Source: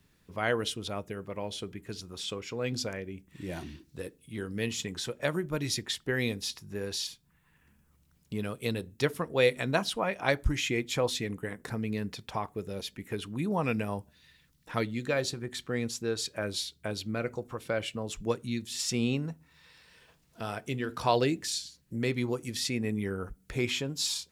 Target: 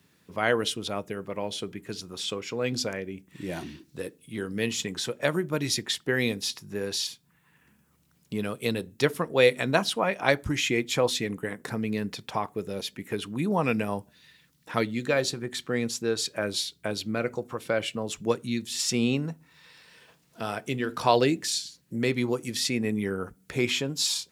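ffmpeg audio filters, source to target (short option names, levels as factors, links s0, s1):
-af "highpass=130,volume=1.68"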